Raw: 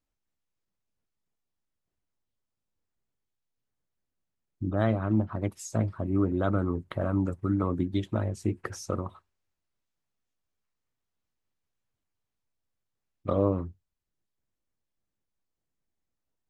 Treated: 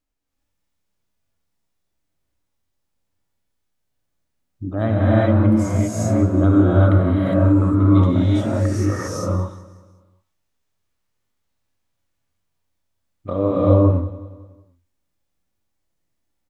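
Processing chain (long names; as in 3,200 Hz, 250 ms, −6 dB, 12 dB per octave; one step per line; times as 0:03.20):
repeating echo 185 ms, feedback 46%, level −17 dB
reverb whose tail is shaped and stops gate 430 ms rising, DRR −7 dB
harmonic and percussive parts rebalanced harmonic +6 dB
level −2 dB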